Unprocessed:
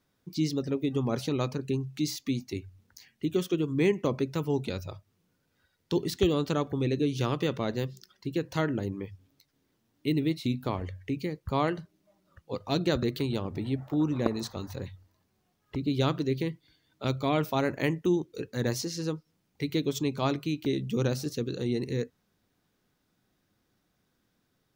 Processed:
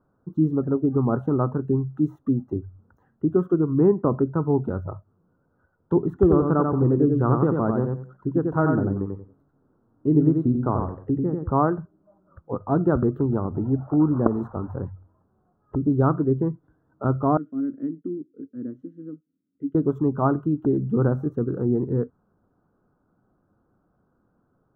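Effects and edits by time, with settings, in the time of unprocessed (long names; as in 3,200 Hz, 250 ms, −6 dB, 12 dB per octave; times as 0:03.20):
0:06.13–0:11.51: repeating echo 91 ms, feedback 23%, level −4 dB
0:17.37–0:19.75: formant filter i
whole clip: elliptic low-pass filter 1,400 Hz, stop band 40 dB; dynamic equaliser 530 Hz, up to −5 dB, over −46 dBFS, Q 3; level +8.5 dB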